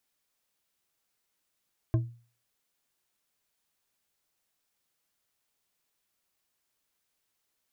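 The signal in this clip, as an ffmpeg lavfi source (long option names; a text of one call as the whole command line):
ffmpeg -f lavfi -i "aevalsrc='0.112*pow(10,-3*t/0.4)*sin(2*PI*118*t)+0.0473*pow(10,-3*t/0.197)*sin(2*PI*325.3*t)+0.02*pow(10,-3*t/0.123)*sin(2*PI*637.7*t)+0.00841*pow(10,-3*t/0.086)*sin(2*PI*1054.1*t)+0.00355*pow(10,-3*t/0.065)*sin(2*PI*1574.1*t)':duration=0.89:sample_rate=44100" out.wav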